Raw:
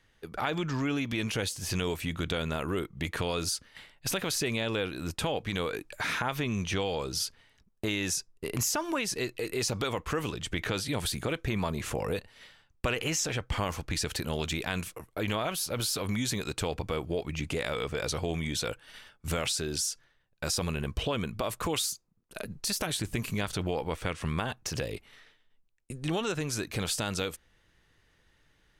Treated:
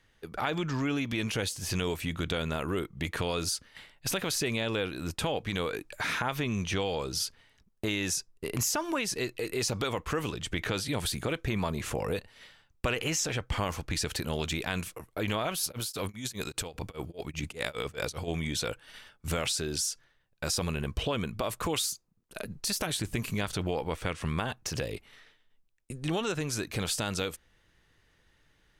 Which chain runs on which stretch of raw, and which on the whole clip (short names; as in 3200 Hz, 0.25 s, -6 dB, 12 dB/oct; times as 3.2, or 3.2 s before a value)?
15.63–18.28 negative-ratio compressor -33 dBFS, ratio -0.5 + high shelf 6900 Hz +6 dB + beating tremolo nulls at 5 Hz
whole clip: dry